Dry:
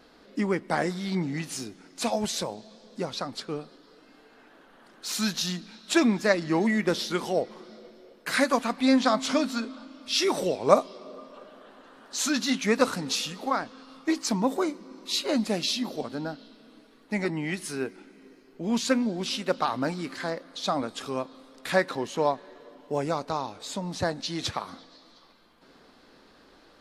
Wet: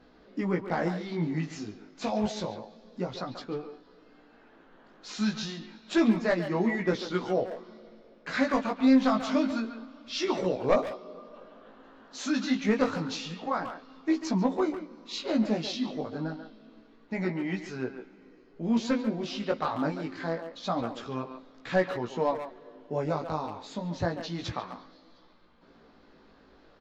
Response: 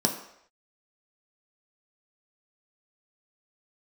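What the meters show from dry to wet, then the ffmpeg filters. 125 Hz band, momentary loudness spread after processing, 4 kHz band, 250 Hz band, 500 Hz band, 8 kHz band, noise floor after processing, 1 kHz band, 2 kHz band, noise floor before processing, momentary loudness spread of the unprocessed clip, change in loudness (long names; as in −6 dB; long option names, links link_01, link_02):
+0.5 dB, 16 LU, −8.0 dB, 0.0 dB, −2.5 dB, −12.0 dB, −58 dBFS, −3.5 dB, −4.5 dB, −57 dBFS, 14 LU, −2.0 dB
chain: -filter_complex "[0:a]aresample=16000,volume=14.5dB,asoftclip=hard,volume=-14.5dB,aresample=44100,flanger=delay=16:depth=3.3:speed=0.28,lowpass=frequency=2600:poles=1,lowshelf=frequency=180:gain=6.5,asplit=2[link_01][link_02];[link_02]adelay=140,highpass=300,lowpass=3400,asoftclip=type=hard:threshold=-24dB,volume=-8dB[link_03];[link_01][link_03]amix=inputs=2:normalize=0"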